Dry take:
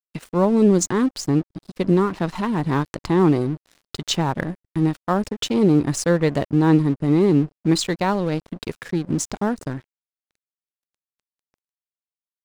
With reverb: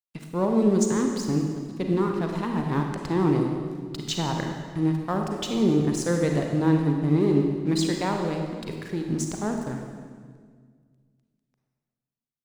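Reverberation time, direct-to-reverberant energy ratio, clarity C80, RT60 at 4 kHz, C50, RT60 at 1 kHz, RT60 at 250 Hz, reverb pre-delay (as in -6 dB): 1.8 s, 2.5 dB, 5.0 dB, 1.5 s, 3.5 dB, 1.6 s, 2.3 s, 34 ms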